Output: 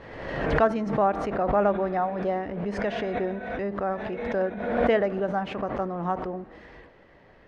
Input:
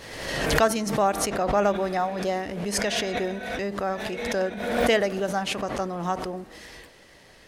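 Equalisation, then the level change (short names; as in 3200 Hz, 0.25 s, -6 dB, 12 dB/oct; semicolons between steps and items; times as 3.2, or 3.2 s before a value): LPF 1600 Hz 12 dB/oct; 0.0 dB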